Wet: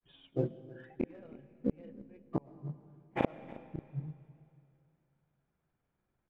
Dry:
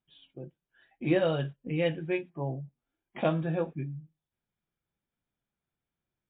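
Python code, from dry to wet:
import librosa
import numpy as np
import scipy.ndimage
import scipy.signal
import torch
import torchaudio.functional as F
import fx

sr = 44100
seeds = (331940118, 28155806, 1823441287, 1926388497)

p1 = scipy.signal.sosfilt(scipy.signal.butter(2, 1700.0, 'lowpass', fs=sr, output='sos'), x)
p2 = fx.hum_notches(p1, sr, base_hz=50, count=7)
p3 = fx.gate_flip(p2, sr, shuts_db=-30.0, range_db=-37)
p4 = np.sign(p3) * np.maximum(np.abs(p3) - 10.0 ** (-59.0 / 20.0), 0.0)
p5 = p3 + F.gain(torch.from_numpy(p4), -4.5).numpy()
p6 = fx.granulator(p5, sr, seeds[0], grain_ms=100.0, per_s=20.0, spray_ms=22.0, spread_st=0)
p7 = p6 + fx.echo_single(p6, sr, ms=317, db=-19.5, dry=0)
p8 = fx.rev_freeverb(p7, sr, rt60_s=2.6, hf_ratio=0.95, predelay_ms=70, drr_db=16.0)
y = F.gain(torch.from_numpy(p8), 9.5).numpy()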